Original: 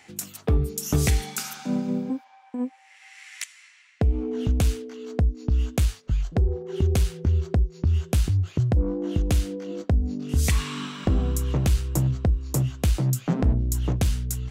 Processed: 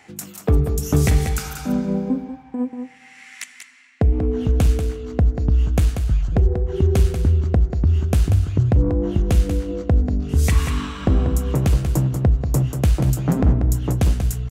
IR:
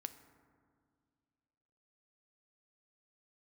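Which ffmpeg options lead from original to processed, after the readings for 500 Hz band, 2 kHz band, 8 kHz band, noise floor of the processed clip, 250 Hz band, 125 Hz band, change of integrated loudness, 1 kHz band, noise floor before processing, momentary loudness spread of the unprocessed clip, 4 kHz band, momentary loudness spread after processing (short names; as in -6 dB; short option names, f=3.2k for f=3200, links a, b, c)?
+5.5 dB, +3.0 dB, 0.0 dB, -46 dBFS, +5.0 dB, +5.5 dB, +5.5 dB, +5.0 dB, -54 dBFS, 9 LU, 0.0 dB, 8 LU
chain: -filter_complex "[0:a]aecho=1:1:188:0.422,asplit=2[a][b];[1:a]atrim=start_sample=2205,lowpass=2.5k[c];[b][c]afir=irnorm=-1:irlink=0,volume=1dB[d];[a][d]amix=inputs=2:normalize=0"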